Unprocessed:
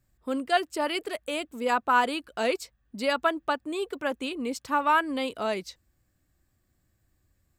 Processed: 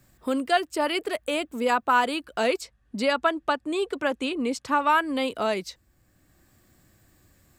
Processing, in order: 2.61–4.90 s: low-pass 10 kHz 12 dB/octave; three bands compressed up and down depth 40%; trim +2.5 dB

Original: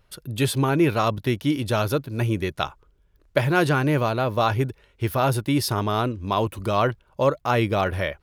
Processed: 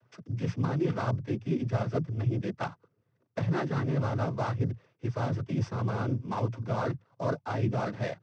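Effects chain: sorted samples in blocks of 8 samples; low-pass 2.3 kHz 12 dB/octave; bass shelf 150 Hz +11 dB; reverse; compression 5:1, threshold -23 dBFS, peak gain reduction 10.5 dB; reverse; noise-vocoded speech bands 16; trim -3.5 dB

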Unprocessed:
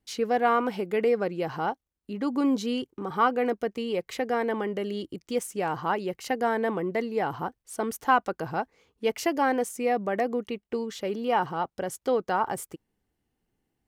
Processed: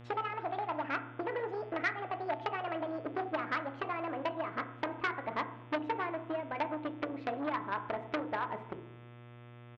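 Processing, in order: gliding tape speed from 180% -> 104%; low-pass 2.5 kHz 24 dB/octave; comb 3.1 ms, depth 31%; transient shaper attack +6 dB, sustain -2 dB; compression 6:1, threshold -29 dBFS, peak gain reduction 15.5 dB; harmonic-percussive split harmonic -5 dB; mains buzz 120 Hz, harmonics 30, -51 dBFS -6 dB/octave; FDN reverb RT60 0.71 s, low-frequency decay 1.35×, high-frequency decay 0.5×, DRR 7 dB; transformer saturation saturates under 1.7 kHz

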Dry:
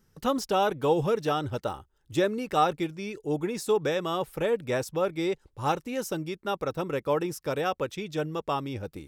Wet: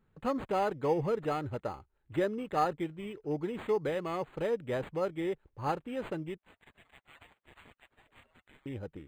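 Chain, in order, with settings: 6.38–8.66 s: spectral gate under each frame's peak -30 dB weak; decimation joined by straight lines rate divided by 8×; trim -5 dB

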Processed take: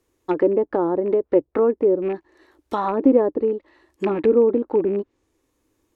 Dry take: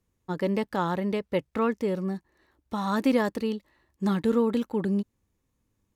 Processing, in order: rattle on loud lows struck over -30 dBFS, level -25 dBFS; resonant low shelf 250 Hz -8 dB, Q 3; low-pass that closes with the level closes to 560 Hz, closed at -24.5 dBFS; trim +9 dB

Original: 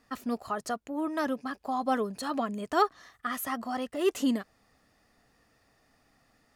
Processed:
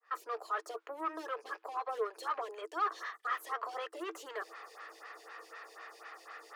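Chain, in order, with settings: fade-in on the opening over 0.62 s; treble shelf 2 kHz +11 dB; reverse; compression 4:1, threshold -44 dBFS, peak gain reduction 22.5 dB; reverse; overdrive pedal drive 23 dB, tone 1.6 kHz, clips at -30.5 dBFS; rippled Chebyshev high-pass 320 Hz, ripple 9 dB; lamp-driven phase shifter 4 Hz; trim +9.5 dB

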